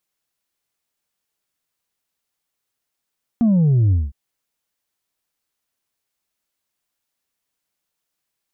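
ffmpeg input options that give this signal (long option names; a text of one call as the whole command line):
ffmpeg -f lavfi -i "aevalsrc='0.237*clip((0.71-t)/0.2,0,1)*tanh(1.33*sin(2*PI*240*0.71/log(65/240)*(exp(log(65/240)*t/0.71)-1)))/tanh(1.33)':duration=0.71:sample_rate=44100" out.wav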